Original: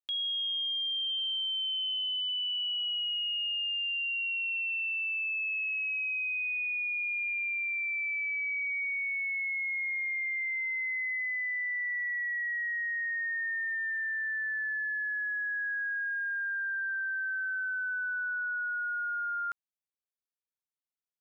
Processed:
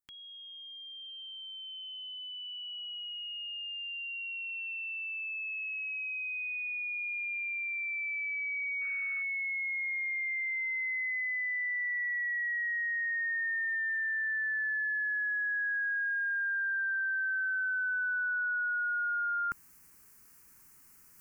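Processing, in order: tilt shelf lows +6.5 dB, about 1.2 kHz; reverse; upward compressor, threshold -39 dBFS; reverse; treble shelf 2.7 kHz +11.5 dB; static phaser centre 1.5 kHz, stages 4; painted sound noise, 8.81–9.23 s, 1.2–2.7 kHz -54 dBFS

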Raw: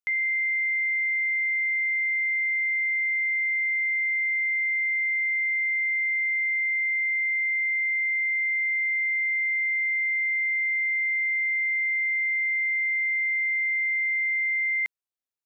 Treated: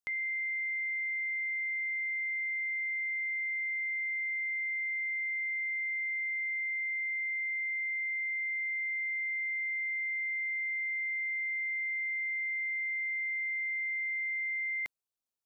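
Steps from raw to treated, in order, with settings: peaking EQ 2 kHz -9 dB

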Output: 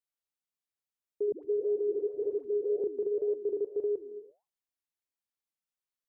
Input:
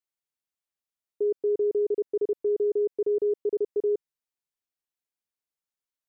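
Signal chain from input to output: gated-style reverb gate 370 ms flat, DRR 12 dB; flange 1.8 Hz, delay 4 ms, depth 8.1 ms, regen -86%; 1.32–2.84 s: phase dispersion highs, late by 114 ms, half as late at 460 Hz

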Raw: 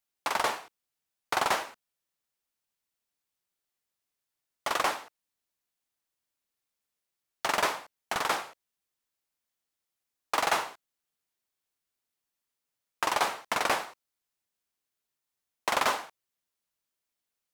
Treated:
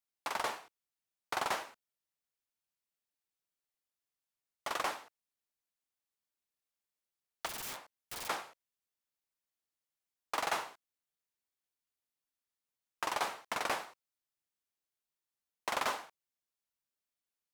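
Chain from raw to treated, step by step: 7.46–8.28 s: integer overflow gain 29.5 dB; trim -7.5 dB

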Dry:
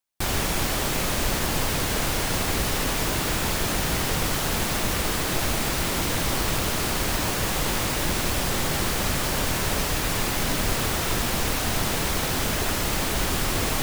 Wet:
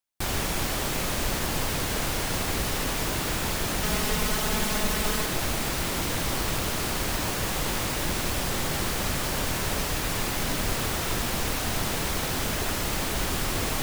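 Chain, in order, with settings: 3.83–5.26 s: comb 4.7 ms, depth 73%; trim -3 dB

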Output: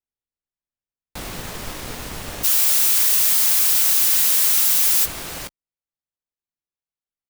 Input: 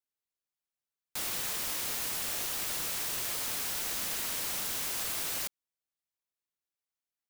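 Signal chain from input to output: tilt EQ -3 dB/octave, from 2.43 s +3.5 dB/octave, from 5.04 s -2 dB/octave; waveshaping leveller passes 2; doubling 17 ms -13 dB

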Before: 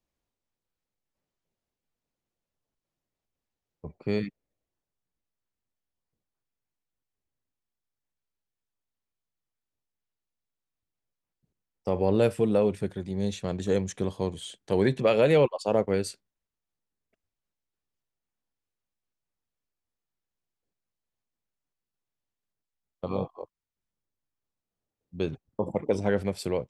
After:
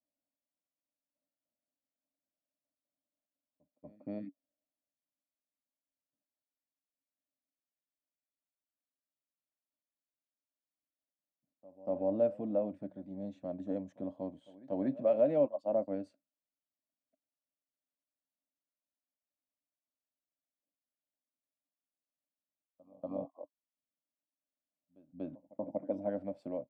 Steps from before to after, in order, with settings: two resonant band-passes 410 Hz, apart 1.1 oct; pre-echo 239 ms -22 dB

